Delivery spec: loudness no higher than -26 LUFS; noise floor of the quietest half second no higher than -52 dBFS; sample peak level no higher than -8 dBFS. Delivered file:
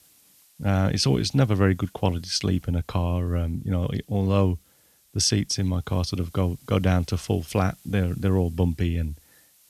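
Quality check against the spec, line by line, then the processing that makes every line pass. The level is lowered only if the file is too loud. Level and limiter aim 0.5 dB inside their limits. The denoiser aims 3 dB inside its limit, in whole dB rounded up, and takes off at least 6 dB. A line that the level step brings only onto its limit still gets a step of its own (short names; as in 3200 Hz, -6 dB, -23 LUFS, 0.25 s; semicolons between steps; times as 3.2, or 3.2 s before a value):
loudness -25.0 LUFS: fail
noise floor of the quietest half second -60 dBFS: OK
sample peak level -6.0 dBFS: fail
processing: gain -1.5 dB; limiter -8.5 dBFS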